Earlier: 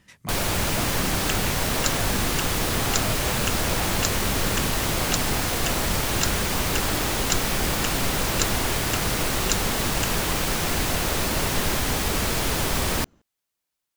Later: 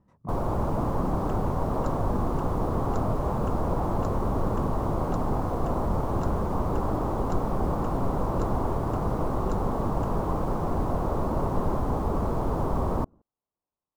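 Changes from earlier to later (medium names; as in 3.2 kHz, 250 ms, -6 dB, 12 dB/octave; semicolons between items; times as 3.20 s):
speech -3.0 dB; master: add FFT filter 1.1 kHz 0 dB, 1.7 kHz -21 dB, 2.5 kHz -28 dB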